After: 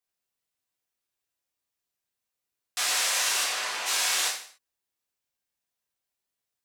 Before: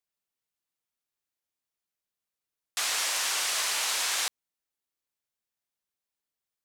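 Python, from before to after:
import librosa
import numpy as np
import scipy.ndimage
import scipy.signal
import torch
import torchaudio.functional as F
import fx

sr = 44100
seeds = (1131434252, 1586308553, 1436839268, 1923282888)

y = fx.lowpass(x, sr, hz=fx.line((3.43, 3500.0), (3.85, 1500.0)), slope=6, at=(3.43, 3.85), fade=0.02)
y = y + 10.0 ** (-18.0 / 20.0) * np.pad(y, (int(155 * sr / 1000.0), 0))[:len(y)]
y = fx.rev_gated(y, sr, seeds[0], gate_ms=160, shape='falling', drr_db=-3.0)
y = F.gain(torch.from_numpy(y), -2.0).numpy()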